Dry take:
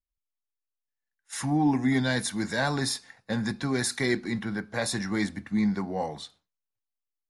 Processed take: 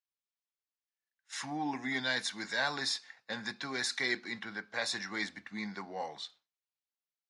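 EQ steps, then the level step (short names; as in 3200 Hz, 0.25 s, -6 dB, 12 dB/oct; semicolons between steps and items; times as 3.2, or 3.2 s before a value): HPF 1400 Hz 6 dB/oct; air absorption 160 m; high shelf 4600 Hz +10.5 dB; 0.0 dB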